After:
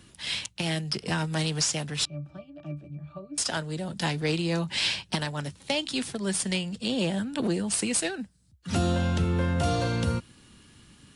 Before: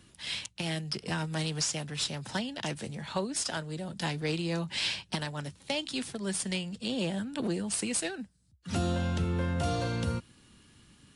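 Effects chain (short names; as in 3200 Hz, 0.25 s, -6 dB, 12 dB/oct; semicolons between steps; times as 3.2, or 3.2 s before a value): 2.05–3.38 octave resonator D, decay 0.16 s; gain +4.5 dB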